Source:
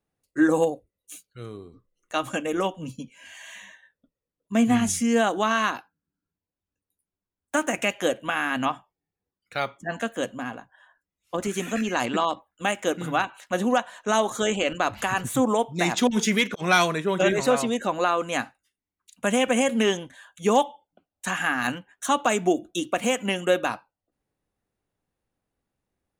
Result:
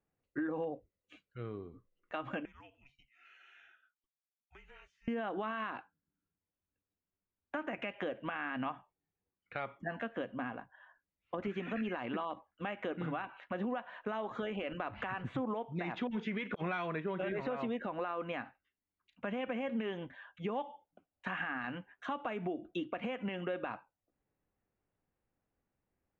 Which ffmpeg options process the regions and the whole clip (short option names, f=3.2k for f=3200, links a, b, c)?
-filter_complex "[0:a]asettb=1/sr,asplit=3[a][b][c];[a]atrim=end=2.454[d];[b]atrim=start=2.45:end=5.08,asetpts=PTS-STARTPTS,afade=t=in:d=0.004:c=qsin,afade=t=out:st=2.626:d=0.004:c=qsin,aderivative,acompressor=threshold=-48dB:ratio=4:attack=3.2:release=140:knee=1:detection=peak,afreqshift=-270[e];[c]atrim=start=5.076[f];[d][e]acrossfade=d=0.004:c1=hsin:c2=qsin[g];[g][f]acrossfade=d=0.004:c1=qsin:c2=hsin,alimiter=limit=-19dB:level=0:latency=1:release=115,lowpass=f=2.7k:w=0.5412,lowpass=f=2.7k:w=1.3066,acompressor=threshold=-32dB:ratio=2.5,volume=-3.5dB"